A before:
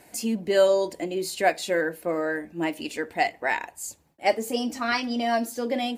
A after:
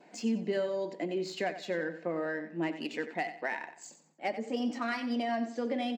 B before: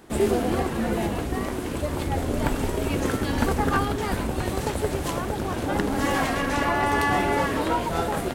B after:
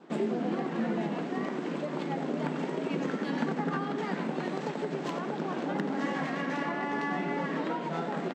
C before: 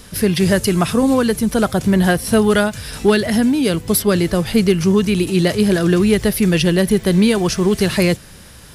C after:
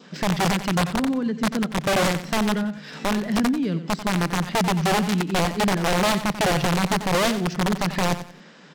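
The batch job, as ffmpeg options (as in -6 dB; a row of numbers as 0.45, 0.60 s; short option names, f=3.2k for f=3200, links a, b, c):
-filter_complex "[0:a]adynamicequalizer=threshold=0.00891:dfrequency=1900:dqfactor=5.4:tfrequency=1900:tqfactor=5.4:attack=5:release=100:ratio=0.375:range=2:mode=boostabove:tftype=bell,afftfilt=real='re*between(b*sr/4096,150,8200)':imag='im*between(b*sr/4096,150,8200)':win_size=4096:overlap=0.75,acrossover=split=240[a][b];[b]acompressor=threshold=-29dB:ratio=5[c];[a][c]amix=inputs=2:normalize=0,aeval=exprs='(mod(4.73*val(0)+1,2)-1)/4.73':c=same,adynamicsmooth=sensitivity=3:basefreq=3.8k,asplit=2[d][e];[e]aecho=0:1:91|182|273:0.251|0.0754|0.0226[f];[d][f]amix=inputs=2:normalize=0,volume=-2.5dB"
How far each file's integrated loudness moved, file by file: -8.0, -7.5, -7.0 LU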